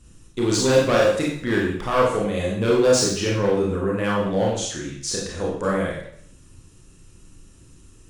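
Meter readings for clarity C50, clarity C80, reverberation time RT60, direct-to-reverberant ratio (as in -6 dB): 2.0 dB, 6.0 dB, 0.60 s, -3.5 dB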